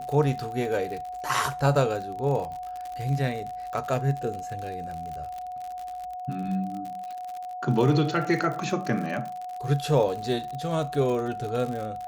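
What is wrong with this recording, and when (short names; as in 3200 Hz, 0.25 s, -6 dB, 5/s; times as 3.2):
crackle 62/s -32 dBFS
tone 730 Hz -33 dBFS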